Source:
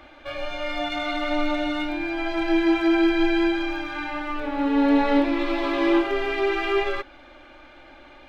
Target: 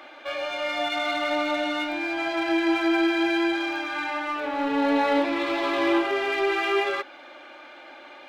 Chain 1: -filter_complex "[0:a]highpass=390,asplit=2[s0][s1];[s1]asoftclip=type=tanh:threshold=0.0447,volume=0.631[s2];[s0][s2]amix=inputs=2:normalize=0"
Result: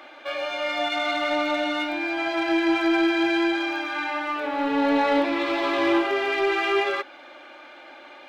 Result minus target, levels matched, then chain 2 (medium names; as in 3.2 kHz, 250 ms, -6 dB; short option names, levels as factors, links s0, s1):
saturation: distortion -4 dB
-filter_complex "[0:a]highpass=390,asplit=2[s0][s1];[s1]asoftclip=type=tanh:threshold=0.0188,volume=0.631[s2];[s0][s2]amix=inputs=2:normalize=0"